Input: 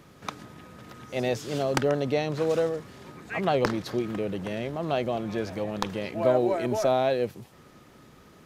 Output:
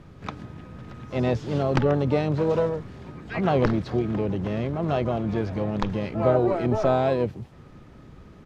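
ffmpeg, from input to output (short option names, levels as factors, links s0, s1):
-filter_complex "[0:a]asplit=4[s0][s1][s2][s3];[s1]asetrate=29433,aresample=44100,atempo=1.49831,volume=0.141[s4];[s2]asetrate=55563,aresample=44100,atempo=0.793701,volume=0.158[s5];[s3]asetrate=88200,aresample=44100,atempo=0.5,volume=0.2[s6];[s0][s4][s5][s6]amix=inputs=4:normalize=0,acrossover=split=7000[s7][s8];[s8]acompressor=threshold=0.00141:ratio=4:attack=1:release=60[s9];[s7][s9]amix=inputs=2:normalize=0,aemphasis=mode=reproduction:type=bsi"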